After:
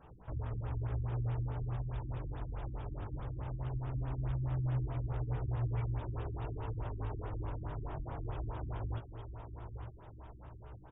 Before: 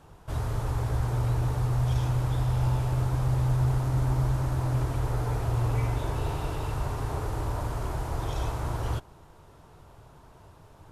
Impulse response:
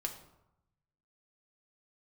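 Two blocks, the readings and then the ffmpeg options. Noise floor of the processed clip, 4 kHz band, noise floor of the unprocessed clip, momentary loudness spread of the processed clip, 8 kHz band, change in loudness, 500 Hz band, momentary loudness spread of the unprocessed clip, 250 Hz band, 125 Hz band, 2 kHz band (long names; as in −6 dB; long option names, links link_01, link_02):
−53 dBFS, below −15 dB, −53 dBFS, 12 LU, below −35 dB, −10.5 dB, −10.5 dB, 6 LU, −10.0 dB, −10.0 dB, −13.0 dB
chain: -af "aecho=1:1:900|1800|2700|3600:0.266|0.101|0.0384|0.0146,acompressor=threshold=-44dB:ratio=1.5,flanger=delay=16:depth=3.8:speed=0.19,aresample=16000,acrusher=bits=5:mode=log:mix=0:aa=0.000001,aresample=44100,afftfilt=real='re*lt(b*sr/1024,340*pow(3800/340,0.5+0.5*sin(2*PI*4.7*pts/sr)))':imag='im*lt(b*sr/1024,340*pow(3800/340,0.5+0.5*sin(2*PI*4.7*pts/sr)))':win_size=1024:overlap=0.75"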